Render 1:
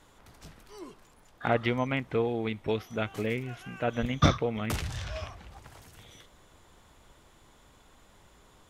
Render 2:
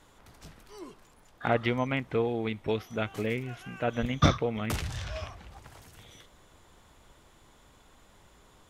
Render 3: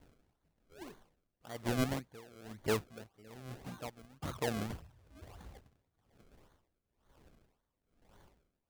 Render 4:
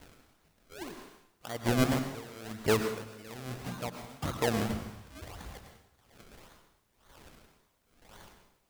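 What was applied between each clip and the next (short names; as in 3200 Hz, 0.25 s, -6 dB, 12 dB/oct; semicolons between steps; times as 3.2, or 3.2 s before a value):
nothing audible
loudest bins only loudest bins 64; decimation with a swept rate 33×, swing 100% 1.8 Hz; dB-linear tremolo 1.1 Hz, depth 25 dB; gain -2.5 dB
plate-style reverb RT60 0.72 s, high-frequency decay 0.9×, pre-delay 85 ms, DRR 7 dB; mismatched tape noise reduction encoder only; gain +6 dB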